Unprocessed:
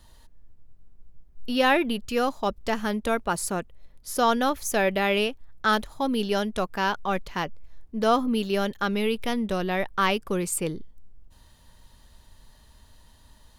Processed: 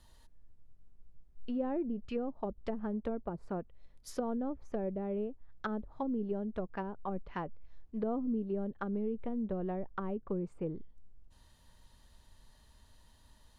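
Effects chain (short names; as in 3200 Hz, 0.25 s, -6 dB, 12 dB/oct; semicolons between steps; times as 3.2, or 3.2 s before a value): treble ducked by the level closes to 410 Hz, closed at -22 dBFS; gain -7.5 dB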